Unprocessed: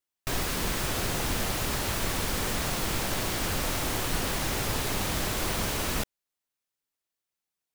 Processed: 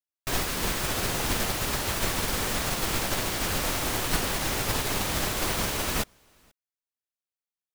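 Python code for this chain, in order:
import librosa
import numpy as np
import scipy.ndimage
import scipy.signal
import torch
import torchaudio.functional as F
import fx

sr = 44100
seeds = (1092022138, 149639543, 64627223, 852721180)

p1 = fx.low_shelf(x, sr, hz=330.0, db=-3.0)
p2 = p1 + fx.echo_single(p1, sr, ms=478, db=-18.5, dry=0)
p3 = fx.upward_expand(p2, sr, threshold_db=-39.0, expansion=2.5)
y = p3 * librosa.db_to_amplitude(7.0)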